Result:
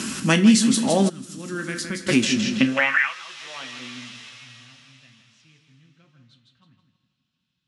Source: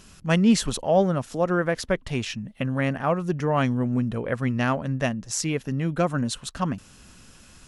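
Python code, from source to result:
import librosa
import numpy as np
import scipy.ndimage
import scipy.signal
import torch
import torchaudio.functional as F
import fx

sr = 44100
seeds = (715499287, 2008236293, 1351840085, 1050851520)

p1 = x + fx.echo_feedback(x, sr, ms=162, feedback_pct=35, wet_db=-8, dry=0)
p2 = fx.filter_sweep_lowpass(p1, sr, from_hz=9600.0, to_hz=120.0, start_s=2.23, end_s=4.31, q=1.5)
p3 = fx.peak_eq(p2, sr, hz=570.0, db=-14.5, octaves=2.0)
p4 = fx.rev_double_slope(p3, sr, seeds[0], early_s=0.26, late_s=3.8, knee_db=-22, drr_db=5.0)
p5 = fx.filter_sweep_highpass(p4, sr, from_hz=270.0, to_hz=3600.0, start_s=2.63, end_s=3.14, q=3.0)
p6 = fx.tone_stack(p5, sr, knobs='6-0-2', at=(1.08, 2.08), fade=0.02)
p7 = fx.band_squash(p6, sr, depth_pct=70)
y = p7 * 10.0 ** (8.5 / 20.0)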